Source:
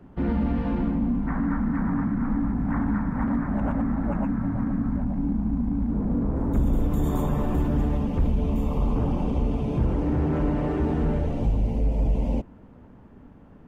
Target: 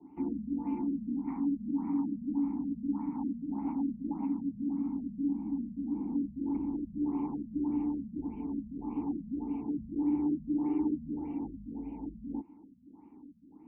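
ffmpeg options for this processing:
-filter_complex "[0:a]equalizer=f=120:w=2.2:g=-6.5,asplit=2[s0][s1];[s1]acompressor=threshold=0.0178:ratio=16,volume=1.06[s2];[s0][s2]amix=inputs=2:normalize=0,asplit=3[s3][s4][s5];[s3]bandpass=f=300:t=q:w=8,volume=1[s6];[s4]bandpass=f=870:t=q:w=8,volume=0.501[s7];[s5]bandpass=f=2240:t=q:w=8,volume=0.355[s8];[s6][s7][s8]amix=inputs=3:normalize=0,acrossover=split=260[s9][s10];[s10]acompressor=threshold=0.0355:ratio=4[s11];[s9][s11]amix=inputs=2:normalize=0,afftfilt=real='re*lt(b*sr/1024,220*pow(3200/220,0.5+0.5*sin(2*PI*1.7*pts/sr)))':imag='im*lt(b*sr/1024,220*pow(3200/220,0.5+0.5*sin(2*PI*1.7*pts/sr)))':win_size=1024:overlap=0.75"

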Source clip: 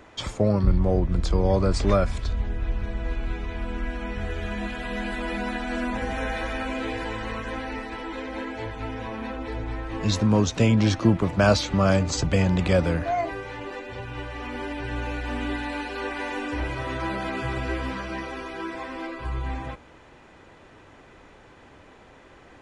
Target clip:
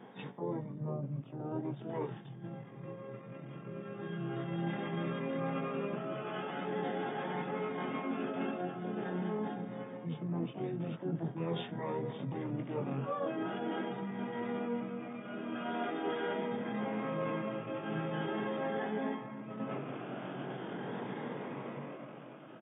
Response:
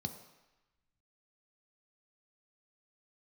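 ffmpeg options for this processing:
-filter_complex "[0:a]afftfilt=real='re*pow(10,6/40*sin(2*PI*(0.96*log(max(b,1)*sr/1024/100)/log(2)-(0.43)*(pts-256)/sr)))':imag='im*pow(10,6/40*sin(2*PI*(0.96*log(max(b,1)*sr/1024/100)/log(2)-(0.43)*(pts-256)/sr)))':win_size=1024:overlap=0.75,bandreject=f=253:t=h:w=4,bandreject=f=506:t=h:w=4,asplit=4[s0][s1][s2][s3];[s1]asetrate=37084,aresample=44100,atempo=1.18921,volume=0.398[s4];[s2]asetrate=58866,aresample=44100,atempo=0.749154,volume=0.251[s5];[s3]asetrate=88200,aresample=44100,atempo=0.5,volume=0.794[s6];[s0][s4][s5][s6]amix=inputs=4:normalize=0,tiltshelf=f=1200:g=6,flanger=delay=17:depth=2.9:speed=0.14,dynaudnorm=f=190:g=13:m=5.62,aecho=1:1:71:0.0668,asetrate=36028,aresample=44100,atempo=1.22405,areverse,acompressor=threshold=0.0398:ratio=8,areverse,afftfilt=real='re*between(b*sr/4096,110,3700)':imag='im*between(b*sr/4096,110,3700)':win_size=4096:overlap=0.75,volume=0.596"

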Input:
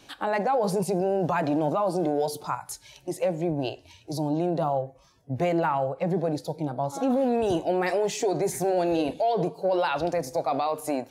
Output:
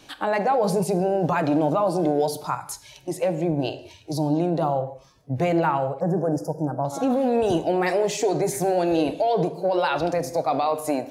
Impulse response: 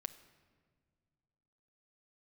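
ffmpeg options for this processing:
-filter_complex "[0:a]asettb=1/sr,asplit=3[s0][s1][s2];[s0]atrim=end=6.004[s3];[s1]atrim=start=6:end=6.85,asetpts=PTS-STARTPTS,afade=t=in:d=0.004:c=qsin,afade=t=out:st=0.846:d=0.004:c=qsin,asuperstop=centerf=3000:order=20:qfactor=0.92[s4];[s2]atrim=start=6.846[s5];[s3][s4]acrossfade=d=0.004:c1=hsin:c2=qsin[s6];[s6][s5]acrossfade=d=0.004:c1=qsin:c2=hsin[s7];[1:a]atrim=start_sample=2205,afade=t=out:st=0.25:d=0.01,atrim=end_sample=11466[s8];[s7][s8]afir=irnorm=-1:irlink=0,volume=2"

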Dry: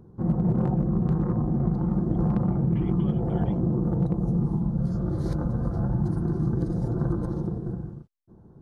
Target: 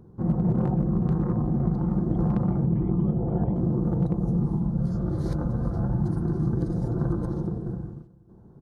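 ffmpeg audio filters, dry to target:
-filter_complex "[0:a]asettb=1/sr,asplit=3[s0][s1][s2];[s0]atrim=end=2.664[s3];[s1]atrim=start=2.66:end=3.56,asetpts=PTS-STARTPTS,afade=t=in:d=0.004:c=qsin,afade=t=out:st=0.896:d=0.004:c=qsin,lowpass=1100[s4];[s2]atrim=start=3.556[s5];[s3][s4]acrossfade=d=0.004:c1=hsin:c2=qsin[s6];[s6][s5]acrossfade=d=0.004:c1=qsin:c2=hsin,aecho=1:1:369|738:0.0794|0.0214"

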